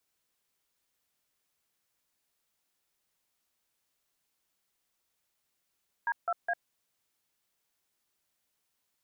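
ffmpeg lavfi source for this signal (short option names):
-f lavfi -i "aevalsrc='0.0335*clip(min(mod(t,0.207),0.051-mod(t,0.207))/0.002,0,1)*(eq(floor(t/0.207),0)*(sin(2*PI*941*mod(t,0.207))+sin(2*PI*1633*mod(t,0.207)))+eq(floor(t/0.207),1)*(sin(2*PI*697*mod(t,0.207))+sin(2*PI*1336*mod(t,0.207)))+eq(floor(t/0.207),2)*(sin(2*PI*697*mod(t,0.207))+sin(2*PI*1633*mod(t,0.207))))':d=0.621:s=44100"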